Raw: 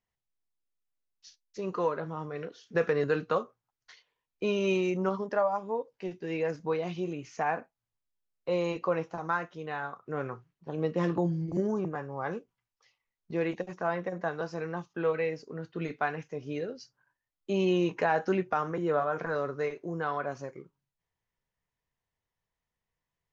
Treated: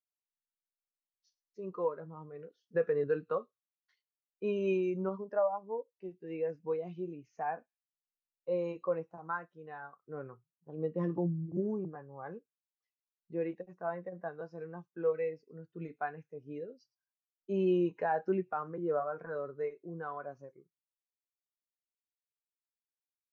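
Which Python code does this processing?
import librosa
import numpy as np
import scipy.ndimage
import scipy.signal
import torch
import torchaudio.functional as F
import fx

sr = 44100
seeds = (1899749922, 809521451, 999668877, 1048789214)

y = fx.echo_wet_highpass(x, sr, ms=110, feedback_pct=33, hz=4300.0, wet_db=-14)
y = fx.spectral_expand(y, sr, expansion=1.5)
y = y * librosa.db_to_amplitude(-5.5)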